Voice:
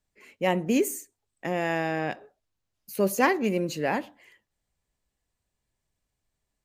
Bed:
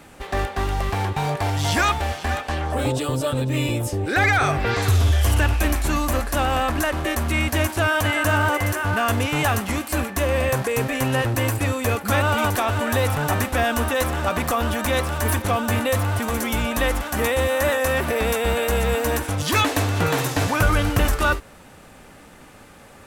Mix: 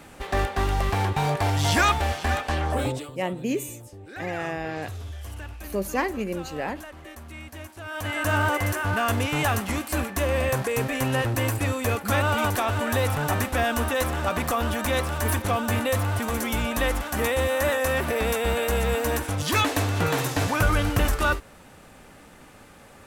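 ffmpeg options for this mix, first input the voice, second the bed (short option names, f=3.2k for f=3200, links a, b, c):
-filter_complex "[0:a]adelay=2750,volume=-3.5dB[a];[1:a]volume=15.5dB,afade=t=out:st=2.71:d=0.4:silence=0.11885,afade=t=in:st=7.84:d=0.54:silence=0.158489[b];[a][b]amix=inputs=2:normalize=0"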